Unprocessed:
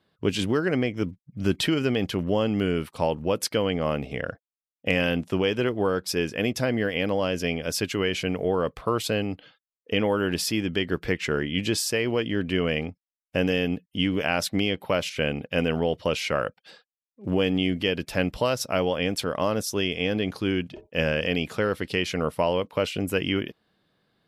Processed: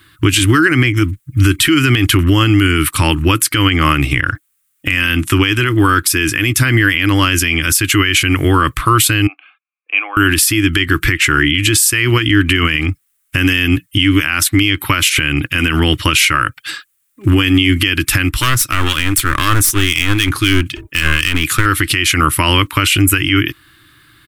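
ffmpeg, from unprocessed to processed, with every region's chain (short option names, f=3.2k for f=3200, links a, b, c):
-filter_complex "[0:a]asettb=1/sr,asplit=3[a][b][c];[a]atrim=end=9.274[d];[b]atrim=start=9.27:end=10.17,asetpts=PTS-STARTPTS,afade=t=in:d=0.004:c=qsin,afade=t=out:st=0.896:d=0.004:c=qsin,asplit=3[e][f][g];[e]bandpass=f=730:t=q:w=8,volume=0dB[h];[f]bandpass=f=1.09k:t=q:w=8,volume=-6dB[i];[g]bandpass=f=2.44k:t=q:w=8,volume=-9dB[j];[h][i][j]amix=inputs=3:normalize=0,highpass=f=390:w=0.5412,highpass=f=390:w=1.3066,equalizer=f=390:t=q:w=4:g=-8,equalizer=f=570:t=q:w=4:g=-3,equalizer=f=830:t=q:w=4:g=3,equalizer=f=1.2k:t=q:w=4:g=-5,equalizer=f=2.2k:t=q:w=4:g=8,equalizer=f=3.1k:t=q:w=4:g=-6,lowpass=f=3.2k:w=0.5412,lowpass=f=3.2k:w=1.3066[k];[c]atrim=start=10.166[l];[d][k]acrossfade=d=0.004:c1=hsin:c2=qsin[m];[m][l]acrossfade=d=0.004:c1=qsin:c2=hsin,asettb=1/sr,asplit=3[n][o][p];[n]atrim=end=18.294[q];[o]atrim=start=18.29:end=21.66,asetpts=PTS-STARTPTS,afade=t=in:d=0.004:c=qsin,afade=t=out:st=3.366:d=0.004:c=qsin,acrossover=split=1800[r][s];[r]aeval=exprs='val(0)*(1-0.7/2+0.7/2*cos(2*PI*3.9*n/s))':c=same[t];[s]aeval=exprs='val(0)*(1-0.7/2-0.7/2*cos(2*PI*3.9*n/s))':c=same[u];[t][u]amix=inputs=2:normalize=0,aeval=exprs='clip(val(0),-1,0.0178)':c=same[v];[p]atrim=start=21.656[w];[q][v]acrossfade=d=0.004:c1=hsin:c2=qsin[x];[x][w]acrossfade=d=0.004:c1=qsin:c2=hsin,firequalizer=gain_entry='entry(120,0);entry(200,-24);entry(310,0);entry(450,-26);entry(670,-24);entry(1200,0);entry(2000,1);entry(5000,-5);entry(8500,8)':delay=0.05:min_phase=1,acompressor=threshold=-31dB:ratio=5,alimiter=level_in=27dB:limit=-1dB:release=50:level=0:latency=1,volume=-1dB"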